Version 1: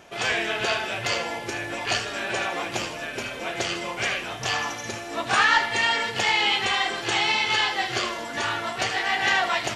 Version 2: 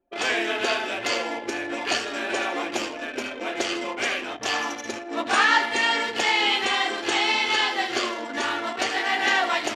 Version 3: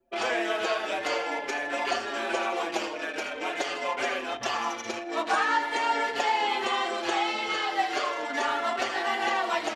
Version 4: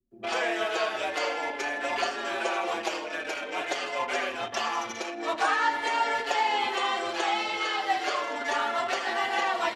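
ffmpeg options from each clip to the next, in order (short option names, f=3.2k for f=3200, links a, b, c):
-af "anlmdn=6.31,lowshelf=f=200:t=q:w=3:g=-9.5"
-filter_complex "[0:a]acrossover=split=470|1300|5500[a][b][c][d];[a]acompressor=threshold=-45dB:ratio=4[e];[b]acompressor=threshold=-27dB:ratio=4[f];[c]acompressor=threshold=-38dB:ratio=4[g];[d]acompressor=threshold=-51dB:ratio=4[h];[e][f][g][h]amix=inputs=4:normalize=0,asplit=2[i][j];[j]adelay=5.5,afreqshift=-0.44[k];[i][k]amix=inputs=2:normalize=1,volume=5.5dB"
-filter_complex "[0:a]acrossover=split=270[a][b];[b]adelay=110[c];[a][c]amix=inputs=2:normalize=0"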